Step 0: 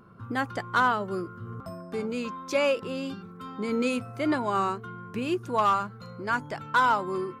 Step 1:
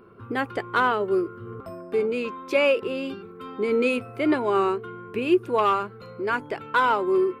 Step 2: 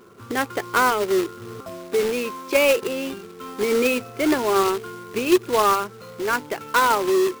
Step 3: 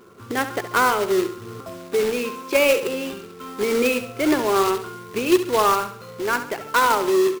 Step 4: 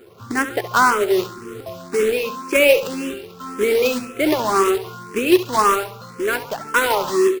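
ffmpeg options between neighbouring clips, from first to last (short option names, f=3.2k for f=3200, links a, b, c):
-af "equalizer=f=160:t=o:w=0.67:g=-7,equalizer=f=400:t=o:w=0.67:g=12,equalizer=f=2.5k:t=o:w=0.67:g=7,equalizer=f=6.3k:t=o:w=0.67:g=-9"
-af "lowshelf=f=110:g=-8,acrusher=bits=2:mode=log:mix=0:aa=0.000001,volume=2.5dB"
-af "aecho=1:1:69|138|207|276:0.282|0.113|0.0451|0.018"
-filter_complex "[0:a]asplit=2[a][b];[b]afreqshift=1.9[c];[a][c]amix=inputs=2:normalize=1,volume=5dB"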